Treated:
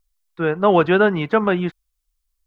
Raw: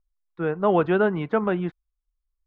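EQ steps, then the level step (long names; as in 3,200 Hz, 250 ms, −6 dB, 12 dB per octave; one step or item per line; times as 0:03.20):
high-shelf EQ 2,300 Hz +11.5 dB
+4.5 dB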